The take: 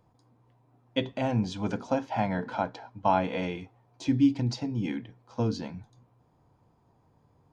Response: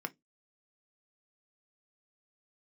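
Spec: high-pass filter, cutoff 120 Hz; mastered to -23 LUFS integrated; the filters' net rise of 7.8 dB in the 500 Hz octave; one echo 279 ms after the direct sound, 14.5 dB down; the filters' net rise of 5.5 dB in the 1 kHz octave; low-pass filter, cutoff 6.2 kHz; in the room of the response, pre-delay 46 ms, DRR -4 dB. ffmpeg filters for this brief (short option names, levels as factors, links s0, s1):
-filter_complex "[0:a]highpass=120,lowpass=6200,equalizer=f=500:t=o:g=8.5,equalizer=f=1000:t=o:g=3.5,aecho=1:1:279:0.188,asplit=2[s0][s1];[1:a]atrim=start_sample=2205,adelay=46[s2];[s1][s2]afir=irnorm=-1:irlink=0,volume=1.33[s3];[s0][s3]amix=inputs=2:normalize=0,volume=0.75"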